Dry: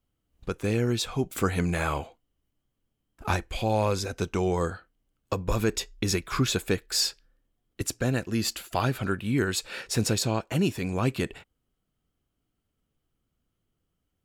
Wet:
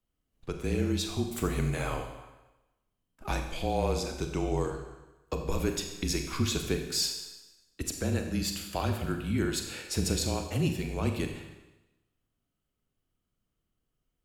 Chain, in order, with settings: Schroeder reverb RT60 1 s, combs from 30 ms, DRR 4.5 dB; dynamic bell 1.4 kHz, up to -5 dB, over -43 dBFS, Q 1.2; frequency shift -31 Hz; trim -4 dB

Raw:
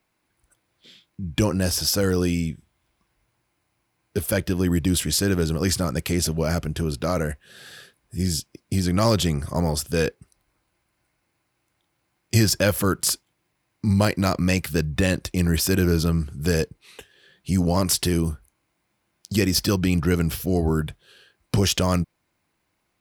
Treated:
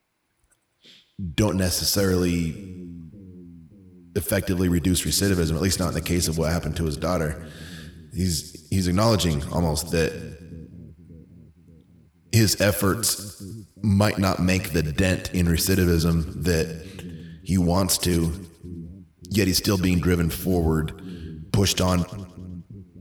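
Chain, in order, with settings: two-band feedback delay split 320 Hz, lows 581 ms, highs 103 ms, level -14.5 dB

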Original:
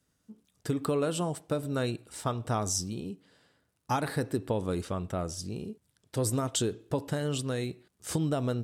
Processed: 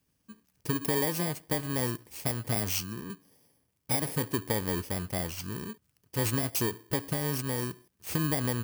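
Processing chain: bit-reversed sample order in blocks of 32 samples; 2.55–3.10 s: three bands expanded up and down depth 70%

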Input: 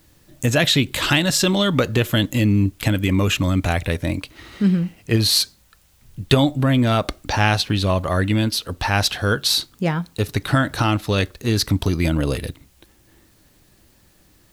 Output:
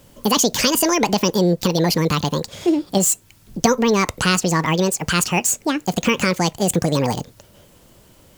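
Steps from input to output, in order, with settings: in parallel at +1 dB: compression, threshold -31 dBFS, peak gain reduction 20 dB; on the sum: speed mistake 45 rpm record played at 78 rpm; trim -1 dB

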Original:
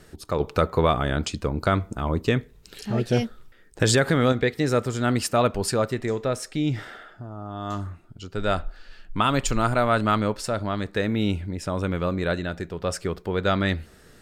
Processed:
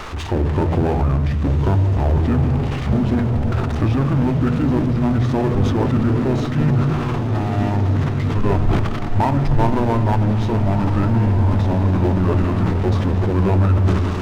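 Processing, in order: zero-crossing glitches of -16.5 dBFS; on a send at -10.5 dB: reverberation RT60 1.2 s, pre-delay 3 ms; on the sum: compression, threshold -21 dBFS, peak gain reduction 8.5 dB; low-pass 1.7 kHz 12 dB/octave; formant shift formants -6 st; power-law waveshaper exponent 0.7; bass shelf 61 Hz +6.5 dB; echo that smears into a reverb 1566 ms, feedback 57%, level -6.5 dB; decay stretcher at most 33 dB/s; trim +3 dB

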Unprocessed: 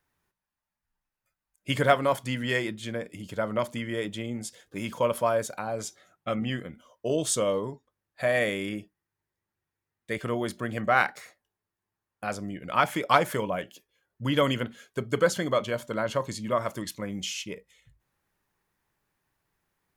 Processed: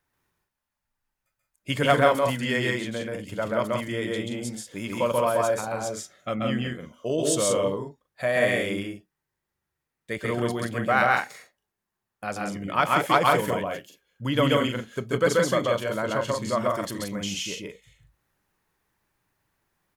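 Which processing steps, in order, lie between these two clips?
loudspeakers at several distances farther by 46 m -1 dB, 60 m -5 dB

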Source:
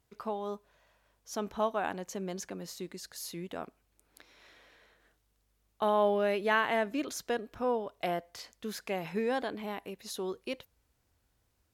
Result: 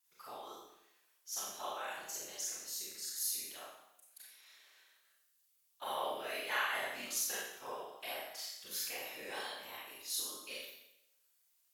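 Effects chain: pre-emphasis filter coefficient 0.97; reverb removal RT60 0.67 s; tone controls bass -11 dB, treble -2 dB; whisper effect; Schroeder reverb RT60 0.84 s, combs from 29 ms, DRR -6 dB; trim +2 dB

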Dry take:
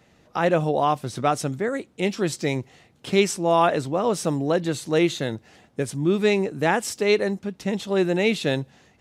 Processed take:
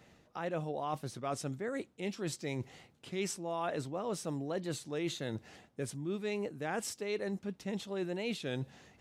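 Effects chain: reverse; compression 4:1, threshold -33 dBFS, peak gain reduction 16.5 dB; reverse; warped record 33 1/3 rpm, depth 100 cents; trim -3 dB

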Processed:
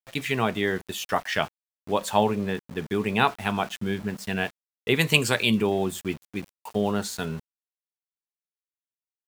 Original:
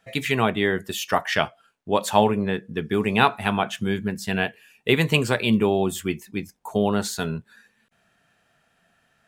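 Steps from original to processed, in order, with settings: 4.99–5.62 s: treble shelf 2.1 kHz +9.5 dB; small samples zeroed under -36 dBFS; trim -3.5 dB

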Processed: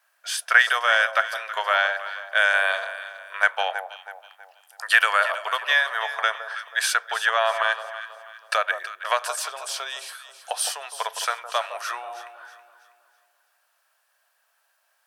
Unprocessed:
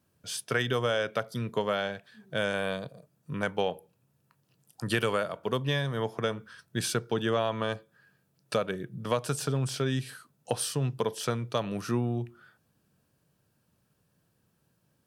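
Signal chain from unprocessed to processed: elliptic high-pass 660 Hz, stop band 70 dB; peaking EQ 1.7 kHz +9.5 dB 0.88 oct, from 9.28 s -3 dB, from 10.65 s +5.5 dB; echo whose repeats swap between lows and highs 162 ms, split 1.1 kHz, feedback 61%, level -8.5 dB; trim +7.5 dB

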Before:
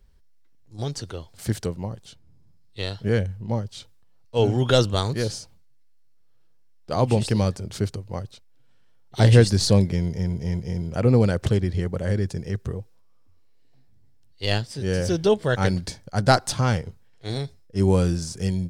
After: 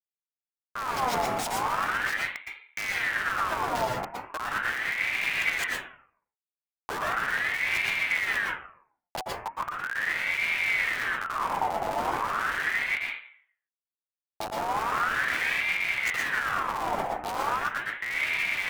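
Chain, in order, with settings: chunks repeated in reverse 131 ms, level -6 dB; low-pass that closes with the level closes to 300 Hz, closed at -17.5 dBFS; treble shelf 3.2 kHz +11 dB; de-hum 110.2 Hz, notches 24; wow and flutter 91 cents; compressor with a negative ratio -27 dBFS, ratio -0.5; Schmitt trigger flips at -31.5 dBFS; vibrato 0.86 Hz 98 cents; plate-style reverb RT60 0.53 s, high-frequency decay 0.3×, pre-delay 105 ms, DRR -3.5 dB; ring modulator with a swept carrier 1.5 kHz, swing 50%, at 0.38 Hz

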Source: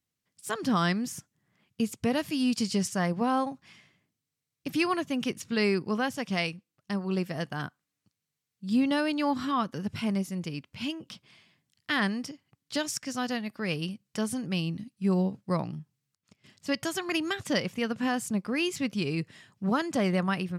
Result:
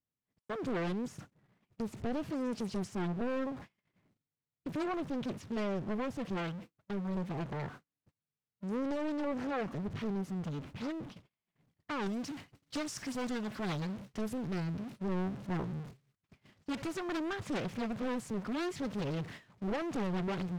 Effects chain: jump at every zero crossing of -36.5 dBFS; low-pass 1.1 kHz 6 dB/octave, from 12.06 s 3 kHz, from 13.82 s 1.8 kHz; gate -42 dBFS, range -45 dB; saturation -27.5 dBFS, distortion -11 dB; loudspeaker Doppler distortion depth 0.94 ms; trim -3 dB

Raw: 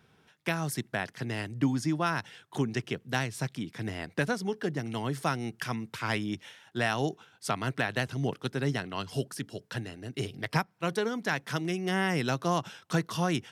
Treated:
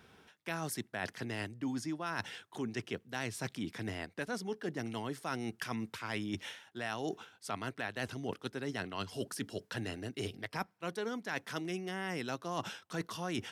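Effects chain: peaking EQ 140 Hz -9.5 dB 0.5 oct; reverse; compression 6:1, threshold -39 dBFS, peak gain reduction 15 dB; reverse; trim +4 dB

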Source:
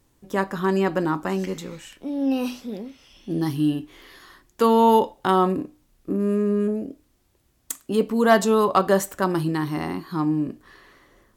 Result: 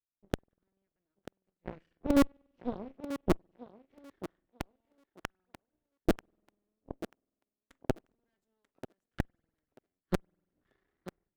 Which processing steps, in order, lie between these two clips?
level-controlled noise filter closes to 970 Hz, open at -14 dBFS; gate with hold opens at -49 dBFS; high-order bell 800 Hz -9 dB 1.3 oct; in parallel at -9 dB: Schmitt trigger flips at -24.5 dBFS; on the sum: inverted gate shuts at -18 dBFS, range -41 dB; half-wave rectifier; spring tank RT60 1.7 s, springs 48 ms, chirp 55 ms, DRR 16 dB; Chebyshev shaper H 5 -30 dB, 7 -16 dB, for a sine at -17.5 dBFS; on a send: thinning echo 938 ms, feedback 18%, high-pass 190 Hz, level -12.5 dB; on the sum: trim +7 dB

